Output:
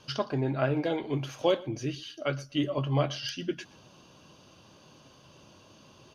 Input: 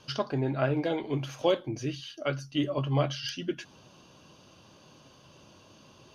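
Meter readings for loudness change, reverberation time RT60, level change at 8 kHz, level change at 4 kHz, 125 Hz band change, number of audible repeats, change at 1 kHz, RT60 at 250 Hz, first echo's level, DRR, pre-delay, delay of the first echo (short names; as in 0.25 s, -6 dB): 0.0 dB, none, n/a, 0.0 dB, 0.0 dB, 1, 0.0 dB, none, -22.0 dB, none, none, 0.121 s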